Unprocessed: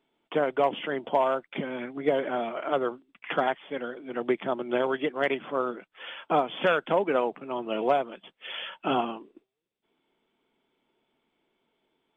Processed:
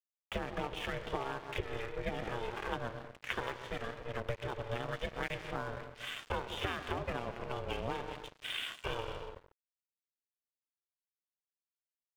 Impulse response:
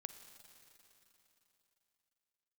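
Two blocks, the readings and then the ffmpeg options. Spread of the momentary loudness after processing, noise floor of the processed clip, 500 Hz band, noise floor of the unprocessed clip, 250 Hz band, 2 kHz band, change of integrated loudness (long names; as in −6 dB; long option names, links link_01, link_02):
5 LU, below −85 dBFS, −13.5 dB, −82 dBFS, −12.5 dB, −7.0 dB, −11.0 dB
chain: -filter_complex "[0:a]afreqshift=-24,equalizer=frequency=125:width_type=o:width=1:gain=5,equalizer=frequency=500:width_type=o:width=1:gain=-10,equalizer=frequency=1000:width_type=o:width=1:gain=-5,asplit=2[link_01][link_02];[link_02]adelay=140,lowpass=frequency=1200:poles=1,volume=-12dB,asplit=2[link_03][link_04];[link_04]adelay=140,lowpass=frequency=1200:poles=1,volume=0.5,asplit=2[link_05][link_06];[link_06]adelay=140,lowpass=frequency=1200:poles=1,volume=0.5,asplit=2[link_07][link_08];[link_08]adelay=140,lowpass=frequency=1200:poles=1,volume=0.5,asplit=2[link_09][link_10];[link_10]adelay=140,lowpass=frequency=1200:poles=1,volume=0.5[link_11];[link_01][link_03][link_05][link_07][link_09][link_11]amix=inputs=6:normalize=0[link_12];[1:a]atrim=start_sample=2205,afade=type=out:start_time=0.29:duration=0.01,atrim=end_sample=13230[link_13];[link_12][link_13]afir=irnorm=-1:irlink=0,acompressor=threshold=-40dB:ratio=6,aeval=exprs='val(0)*sin(2*PI*230*n/s)':channel_layout=same,aeval=exprs='sgn(val(0))*max(abs(val(0))-0.00158,0)':channel_layout=same,volume=10.5dB"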